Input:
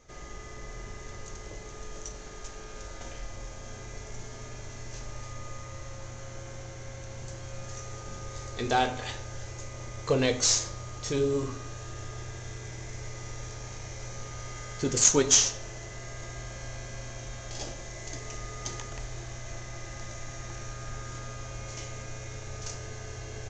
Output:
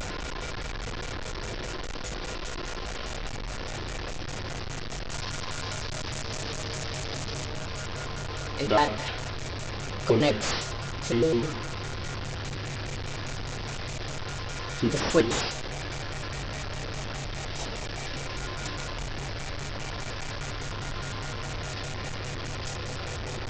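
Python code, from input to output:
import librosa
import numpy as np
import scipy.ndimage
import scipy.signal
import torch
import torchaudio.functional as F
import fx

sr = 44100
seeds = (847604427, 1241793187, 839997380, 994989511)

y = fx.delta_mod(x, sr, bps=32000, step_db=-30.5)
y = fx.high_shelf(y, sr, hz=5000.0, db=fx.steps((0.0, -2.0), (5.09, 8.0), (7.46, -3.0)))
y = fx.dmg_crackle(y, sr, seeds[0], per_s=240.0, level_db=-61.0)
y = fx.vibrato_shape(y, sr, shape='square', rate_hz=4.9, depth_cents=250.0)
y = F.gain(torch.from_numpy(y), 3.0).numpy()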